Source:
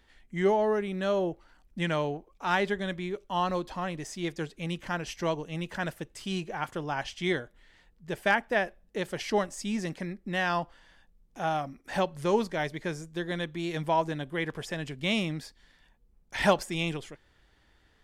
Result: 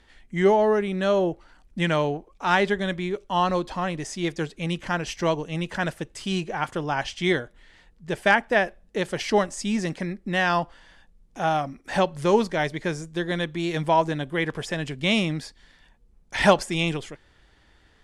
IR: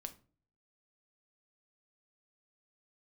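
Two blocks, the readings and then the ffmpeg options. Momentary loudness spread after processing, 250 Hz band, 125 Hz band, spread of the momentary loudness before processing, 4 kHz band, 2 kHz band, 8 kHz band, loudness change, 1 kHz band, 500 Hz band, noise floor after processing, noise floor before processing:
10 LU, +6.0 dB, +6.0 dB, 10 LU, +6.0 dB, +6.0 dB, +6.0 dB, +6.0 dB, +6.0 dB, +6.0 dB, -59 dBFS, -65 dBFS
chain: -af "lowpass=f=11k:w=0.5412,lowpass=f=11k:w=1.3066,volume=6dB"

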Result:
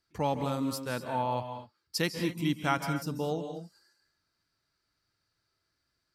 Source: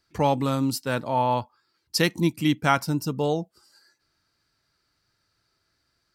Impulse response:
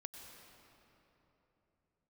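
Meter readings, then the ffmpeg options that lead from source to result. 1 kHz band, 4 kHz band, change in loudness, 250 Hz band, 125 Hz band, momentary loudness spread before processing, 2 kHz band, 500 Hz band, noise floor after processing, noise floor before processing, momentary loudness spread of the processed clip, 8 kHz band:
-7.5 dB, -7.0 dB, -7.5 dB, -7.5 dB, -7.5 dB, 6 LU, -7.0 dB, -7.0 dB, -81 dBFS, -74 dBFS, 9 LU, -7.0 dB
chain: -filter_complex "[1:a]atrim=start_sample=2205,afade=t=out:st=0.22:d=0.01,atrim=end_sample=10143,asetrate=29106,aresample=44100[a];[0:a][a]afir=irnorm=-1:irlink=0,volume=-4dB"

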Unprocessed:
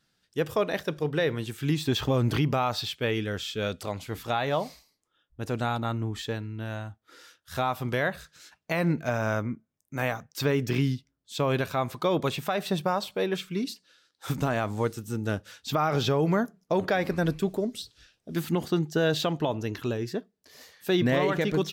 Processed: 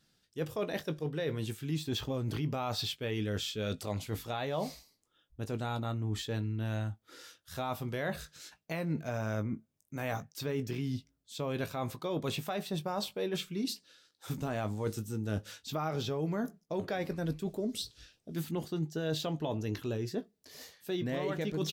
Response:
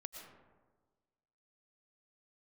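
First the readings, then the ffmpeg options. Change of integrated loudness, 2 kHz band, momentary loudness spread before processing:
-7.5 dB, -10.5 dB, 11 LU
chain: -filter_complex "[0:a]equalizer=f=1.4k:t=o:w=2.1:g=-5,areverse,acompressor=threshold=-34dB:ratio=6,areverse,asplit=2[a][b];[b]adelay=19,volume=-11.5dB[c];[a][c]amix=inputs=2:normalize=0,volume=2dB"

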